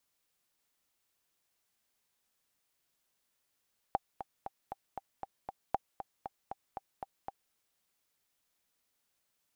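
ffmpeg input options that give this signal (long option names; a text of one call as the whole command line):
ffmpeg -f lavfi -i "aevalsrc='pow(10,(-15.5-11*gte(mod(t,7*60/234),60/234))/20)*sin(2*PI*785*mod(t,60/234))*exp(-6.91*mod(t,60/234)/0.03)':duration=3.58:sample_rate=44100" out.wav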